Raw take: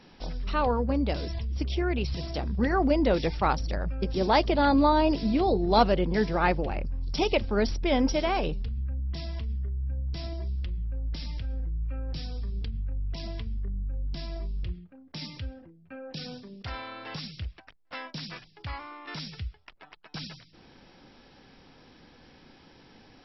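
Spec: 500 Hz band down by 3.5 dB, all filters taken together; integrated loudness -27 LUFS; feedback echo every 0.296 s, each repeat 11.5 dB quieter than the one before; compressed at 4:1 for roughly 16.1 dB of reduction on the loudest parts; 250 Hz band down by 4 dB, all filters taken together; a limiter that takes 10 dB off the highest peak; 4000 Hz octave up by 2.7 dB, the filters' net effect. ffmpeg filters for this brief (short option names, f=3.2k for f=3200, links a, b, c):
-af "equalizer=f=250:t=o:g=-4,equalizer=f=500:t=o:g=-3.5,equalizer=f=4k:t=o:g=3.5,acompressor=threshold=-38dB:ratio=4,alimiter=level_in=11dB:limit=-24dB:level=0:latency=1,volume=-11dB,aecho=1:1:296|592|888:0.266|0.0718|0.0194,volume=17.5dB"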